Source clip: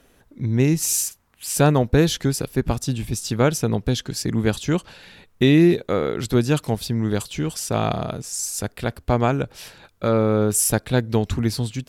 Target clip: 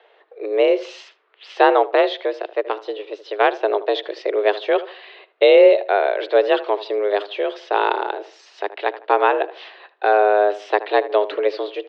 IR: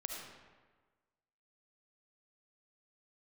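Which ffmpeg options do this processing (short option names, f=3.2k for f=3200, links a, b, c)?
-filter_complex "[0:a]asplit=2[a][b];[b]adelay=77,lowpass=f=1.9k:p=1,volume=-14.5dB,asplit=2[c][d];[d]adelay=77,lowpass=f=1.9k:p=1,volume=0.32,asplit=2[e][f];[f]adelay=77,lowpass=f=1.9k:p=1,volume=0.32[g];[a][c][e][g]amix=inputs=4:normalize=0,asettb=1/sr,asplit=3[h][i][j];[h]atrim=end=1.824[k];[i]atrim=start=1.82:end=3.63,asetpts=PTS-STARTPTS,afade=t=in:d=0.004:c=qsin,afade=t=out:st=1.806:d=0.004:c=qsin,aeval=exprs='0.708*(cos(1*acos(clip(val(0)/0.708,-1,1)))-cos(1*PI/2))+0.0891*(cos(3*acos(clip(val(0)/0.708,-1,1)))-cos(3*PI/2))':c=same[l];[j]atrim=start=3.626[m];[k][l]acrossfade=d=0.004:c1=hsin:c2=qsin[n];[n][m]acrossfade=d=0.004:c1=qsin:c2=hsin,highpass=f=190:t=q:w=0.5412,highpass=f=190:t=q:w=1.307,lowpass=f=3.5k:t=q:w=0.5176,lowpass=f=3.5k:t=q:w=0.7071,lowpass=f=3.5k:t=q:w=1.932,afreqshift=200,volume=4.5dB"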